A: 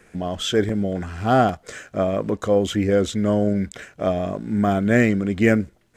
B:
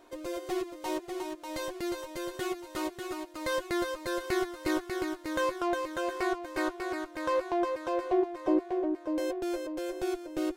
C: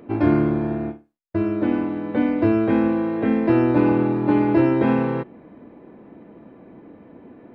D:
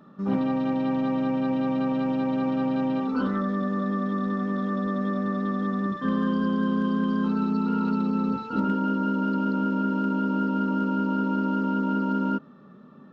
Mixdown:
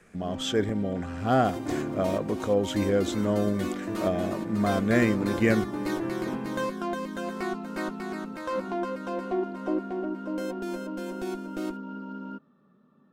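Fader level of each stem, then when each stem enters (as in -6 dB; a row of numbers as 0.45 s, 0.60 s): -6.0 dB, -2.0 dB, -15.5 dB, -13.0 dB; 0.00 s, 1.20 s, 1.45 s, 0.00 s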